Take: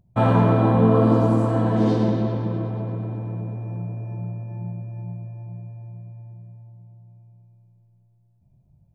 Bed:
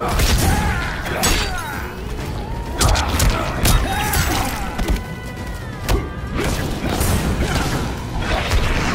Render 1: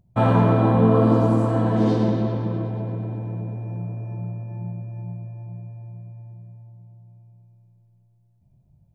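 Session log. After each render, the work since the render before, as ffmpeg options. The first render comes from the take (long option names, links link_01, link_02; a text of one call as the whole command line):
ffmpeg -i in.wav -filter_complex "[0:a]asettb=1/sr,asplit=3[link_01][link_02][link_03];[link_01]atrim=end=2.634[link_04];[link_02]atrim=start=2.63:end=3.83,asetpts=PTS-STARTPTS,afade=type=in:duration=0.004:curve=qsin,afade=type=out:start_time=1.196:duration=0.004:curve=qsin,bandreject=frequency=1200:width=5.5[link_05];[link_03]atrim=start=3.826[link_06];[link_04][link_05]acrossfade=duration=0.004:curve1=hsin:curve2=qsin[link_07];[link_07][link_06]acrossfade=duration=0.004:curve1=qsin:curve2=hsin" out.wav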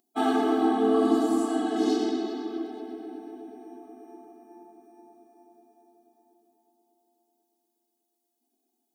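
ffmpeg -i in.wav -filter_complex "[0:a]acrossover=split=190[link_01][link_02];[link_02]aexciter=amount=1.6:drive=9.5:freq=3100[link_03];[link_01][link_03]amix=inputs=2:normalize=0,afftfilt=real='re*eq(mod(floor(b*sr/1024/220),2),1)':imag='im*eq(mod(floor(b*sr/1024/220),2),1)':win_size=1024:overlap=0.75" out.wav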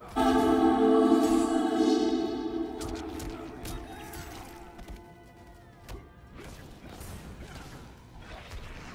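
ffmpeg -i in.wav -i bed.wav -filter_complex "[1:a]volume=-25dB[link_01];[0:a][link_01]amix=inputs=2:normalize=0" out.wav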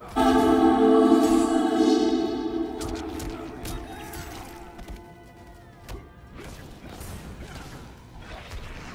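ffmpeg -i in.wav -af "volume=4.5dB" out.wav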